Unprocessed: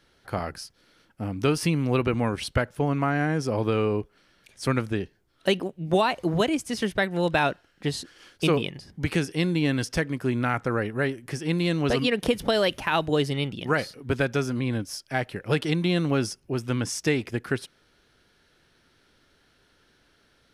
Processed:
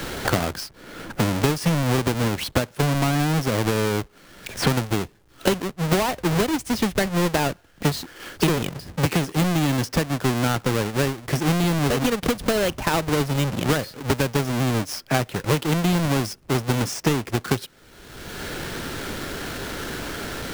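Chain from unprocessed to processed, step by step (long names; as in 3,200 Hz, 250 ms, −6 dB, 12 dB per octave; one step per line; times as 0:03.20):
each half-wave held at its own peak
multiband upward and downward compressor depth 100%
level −2 dB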